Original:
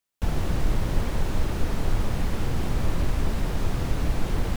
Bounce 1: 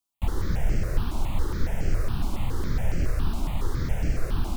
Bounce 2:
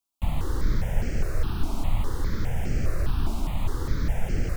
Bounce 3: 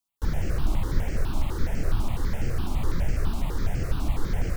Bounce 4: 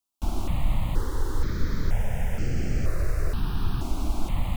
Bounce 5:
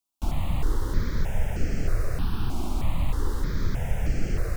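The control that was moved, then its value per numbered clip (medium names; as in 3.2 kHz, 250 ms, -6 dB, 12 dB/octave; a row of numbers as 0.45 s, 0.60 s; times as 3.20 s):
stepped phaser, rate: 7.2 Hz, 4.9 Hz, 12 Hz, 2.1 Hz, 3.2 Hz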